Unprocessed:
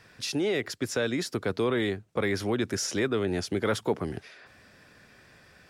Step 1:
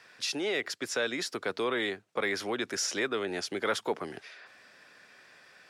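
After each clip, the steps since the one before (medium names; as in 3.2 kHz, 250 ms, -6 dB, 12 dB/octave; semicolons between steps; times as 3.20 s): frequency weighting A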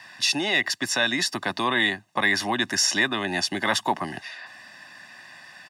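high-pass 86 Hz; comb 1.1 ms, depth 91%; trim +7.5 dB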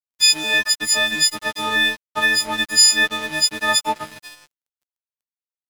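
partials quantised in pitch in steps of 6 st; crossover distortion -29 dBFS; trim -1 dB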